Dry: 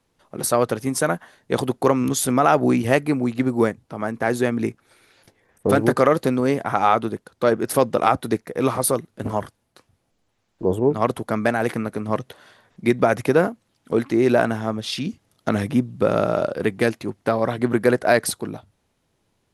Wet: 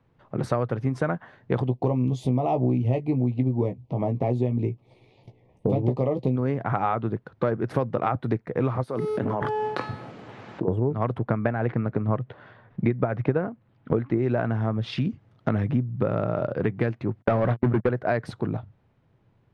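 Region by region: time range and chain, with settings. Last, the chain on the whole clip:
1.67–6.36 s: Butterworth band-stop 1.5 kHz, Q 0.97 + doubling 16 ms -6.5 dB
8.83–10.68 s: high-pass 210 Hz + feedback comb 430 Hz, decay 0.75 s, mix 70% + level flattener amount 100%
11.18–14.18 s: transient shaper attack +6 dB, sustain +1 dB + distance through air 140 m
17.22–17.89 s: gate -25 dBFS, range -30 dB + waveshaping leveller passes 3
whole clip: low-pass 2.1 kHz 12 dB/octave; peaking EQ 120 Hz +11.5 dB 0.85 oct; compression 4:1, threshold -24 dBFS; trim +2 dB

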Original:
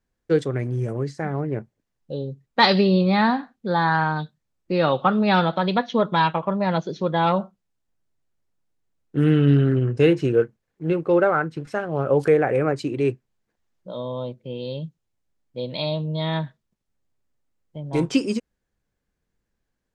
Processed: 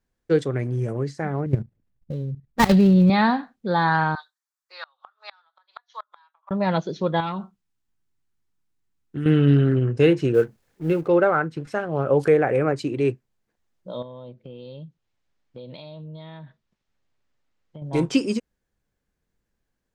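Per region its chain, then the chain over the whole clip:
1.46–3.10 s: dead-time distortion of 0.12 ms + tone controls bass +15 dB, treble -7 dB + level held to a coarse grid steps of 14 dB
4.15–6.51 s: inverse Chebyshev high-pass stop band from 240 Hz, stop band 70 dB + peaking EQ 2.7 kHz -13 dB 0.84 oct + inverted gate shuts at -23 dBFS, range -33 dB
7.20–9.26 s: peaking EQ 570 Hz -15 dB 0.49 oct + compression 2.5:1, threshold -27 dBFS
10.34–11.08 s: companding laws mixed up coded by mu + band-stop 1.1 kHz, Q 20
14.02–17.82 s: compression 10:1, threshold -35 dBFS + distance through air 120 m + tape noise reduction on one side only encoder only
whole clip: none

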